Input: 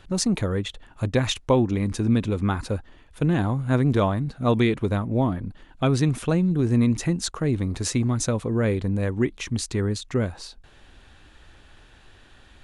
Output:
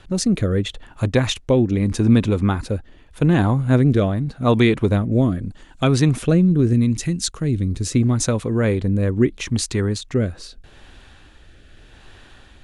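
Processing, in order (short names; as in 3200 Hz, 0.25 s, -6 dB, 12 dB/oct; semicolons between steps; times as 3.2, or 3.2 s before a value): 6.73–7.92 bell 870 Hz -11 dB 2.4 oct; rotary speaker horn 0.8 Hz; 5.12–5.84 bell 7600 Hz +12 dB 0.96 oct; gain +6.5 dB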